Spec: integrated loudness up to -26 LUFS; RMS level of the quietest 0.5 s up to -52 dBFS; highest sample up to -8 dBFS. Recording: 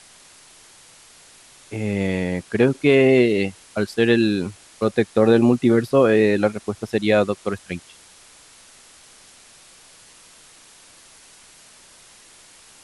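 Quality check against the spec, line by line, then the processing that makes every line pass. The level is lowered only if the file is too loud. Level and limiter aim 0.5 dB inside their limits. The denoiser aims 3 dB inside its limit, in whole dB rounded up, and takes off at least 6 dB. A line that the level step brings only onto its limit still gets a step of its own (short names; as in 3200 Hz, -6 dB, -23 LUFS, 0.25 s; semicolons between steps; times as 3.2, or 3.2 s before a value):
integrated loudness -19.0 LUFS: fail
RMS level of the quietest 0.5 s -49 dBFS: fail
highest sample -4.0 dBFS: fail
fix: gain -7.5 dB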